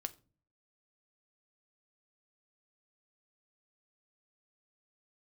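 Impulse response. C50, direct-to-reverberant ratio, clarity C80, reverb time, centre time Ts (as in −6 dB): 20.0 dB, 9.0 dB, 25.0 dB, non-exponential decay, 4 ms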